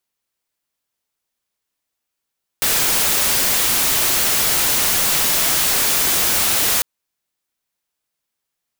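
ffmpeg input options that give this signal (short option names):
-f lavfi -i "anoisesrc=c=white:a=0.245:d=4.2:r=44100:seed=1"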